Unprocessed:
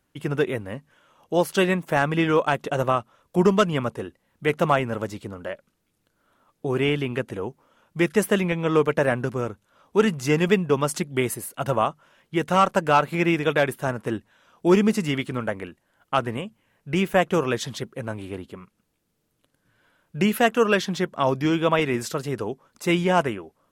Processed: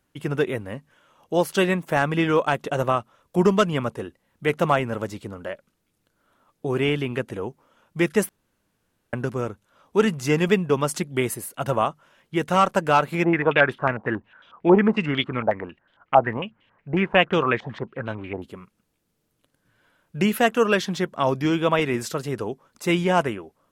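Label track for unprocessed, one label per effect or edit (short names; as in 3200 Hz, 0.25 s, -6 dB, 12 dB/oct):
8.290000	9.130000	room tone
13.240000	18.420000	stepped low-pass 11 Hz 790–3400 Hz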